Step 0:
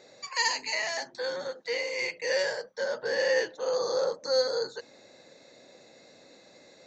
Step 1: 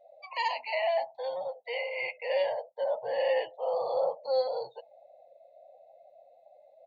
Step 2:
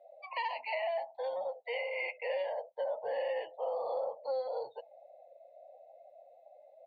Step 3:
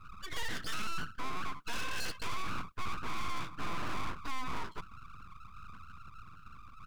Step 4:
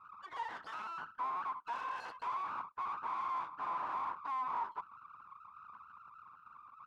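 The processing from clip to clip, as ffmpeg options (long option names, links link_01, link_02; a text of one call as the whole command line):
ffmpeg -i in.wav -af "firequalizer=gain_entry='entry(120,0);entry(230,-11);entry(400,-12);entry(670,11);entry(1500,-17);entry(2100,-2);entry(3000,2);entry(5300,-20)':delay=0.05:min_phase=1,afftdn=noise_reduction=24:noise_floor=-45" out.wav
ffmpeg -i in.wav -filter_complex "[0:a]acrossover=split=210 3800:gain=0.178 1 0.0891[link_01][link_02][link_03];[link_01][link_02][link_03]amix=inputs=3:normalize=0,acompressor=threshold=-32dB:ratio=6" out.wav
ffmpeg -i in.wav -af "aeval=exprs='abs(val(0))':channel_layout=same,aeval=exprs='(tanh(44.7*val(0)+0.55)-tanh(0.55))/44.7':channel_layout=same,volume=11.5dB" out.wav
ffmpeg -i in.wav -af "bandpass=frequency=930:width_type=q:width=4.4:csg=0,volume=8.5dB" out.wav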